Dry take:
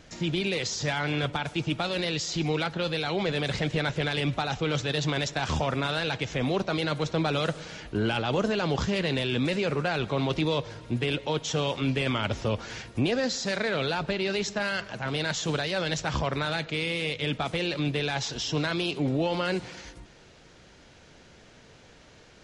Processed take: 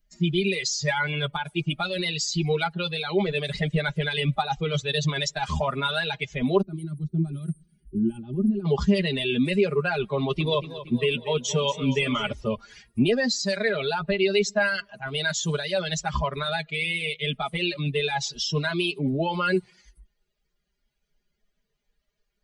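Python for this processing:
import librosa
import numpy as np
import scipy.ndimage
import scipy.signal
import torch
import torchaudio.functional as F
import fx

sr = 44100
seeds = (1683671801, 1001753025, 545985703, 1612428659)

y = fx.bin_expand(x, sr, power=2.0)
y = y + 0.78 * np.pad(y, (int(4.9 * sr / 1000.0), 0))[:len(y)]
y = fx.spec_box(y, sr, start_s=6.62, length_s=2.04, low_hz=400.0, high_hz=8300.0, gain_db=-29)
y = fx.echo_warbled(y, sr, ms=234, feedback_pct=56, rate_hz=2.8, cents=55, wet_db=-13.5, at=(10.17, 12.33))
y = y * 10.0 ** (7.0 / 20.0)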